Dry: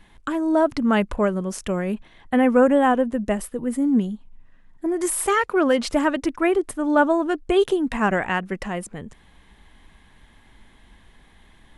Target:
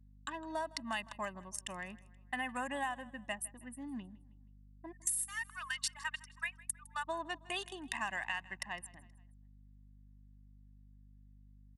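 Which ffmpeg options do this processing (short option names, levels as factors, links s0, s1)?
-filter_complex "[0:a]asplit=3[s0][s1][s2];[s0]afade=t=out:st=4.91:d=0.02[s3];[s1]highpass=f=1100:w=0.5412,highpass=f=1100:w=1.3066,afade=t=in:st=4.91:d=0.02,afade=t=out:st=7.07:d=0.02[s4];[s2]afade=t=in:st=7.07:d=0.02[s5];[s3][s4][s5]amix=inputs=3:normalize=0,anlmdn=63.1,aderivative,aecho=1:1:1.1:0.97,adynamicequalizer=threshold=0.00224:dfrequency=7900:dqfactor=4.8:tfrequency=7900:tqfactor=4.8:attack=5:release=100:ratio=0.375:range=2.5:mode=boostabove:tftype=bell,acompressor=threshold=0.0158:ratio=10,aeval=exprs='val(0)+0.000891*(sin(2*PI*50*n/s)+sin(2*PI*2*50*n/s)/2+sin(2*PI*3*50*n/s)/3+sin(2*PI*4*50*n/s)/4+sin(2*PI*5*50*n/s)/5)':c=same,aecho=1:1:159|318|477:0.0891|0.041|0.0189,volume=1.33"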